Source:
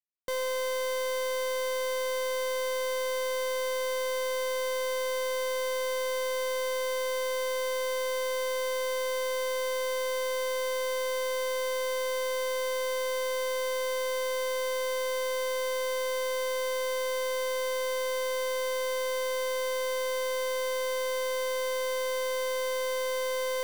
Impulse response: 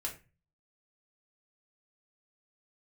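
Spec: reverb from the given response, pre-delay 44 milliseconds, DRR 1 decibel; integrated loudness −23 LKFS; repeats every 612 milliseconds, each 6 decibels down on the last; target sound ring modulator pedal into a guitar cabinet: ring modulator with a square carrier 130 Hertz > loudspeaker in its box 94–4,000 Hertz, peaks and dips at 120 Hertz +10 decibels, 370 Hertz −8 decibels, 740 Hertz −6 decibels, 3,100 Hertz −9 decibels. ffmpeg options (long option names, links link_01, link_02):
-filter_complex "[0:a]aecho=1:1:612|1224|1836|2448|3060|3672:0.501|0.251|0.125|0.0626|0.0313|0.0157,asplit=2[link_01][link_02];[1:a]atrim=start_sample=2205,adelay=44[link_03];[link_02][link_03]afir=irnorm=-1:irlink=0,volume=-2dB[link_04];[link_01][link_04]amix=inputs=2:normalize=0,aeval=exprs='val(0)*sgn(sin(2*PI*130*n/s))':channel_layout=same,highpass=94,equalizer=frequency=120:width_type=q:width=4:gain=10,equalizer=frequency=370:width_type=q:width=4:gain=-8,equalizer=frequency=740:width_type=q:width=4:gain=-6,equalizer=frequency=3100:width_type=q:width=4:gain=-9,lowpass=frequency=4000:width=0.5412,lowpass=frequency=4000:width=1.3066,volume=1.5dB"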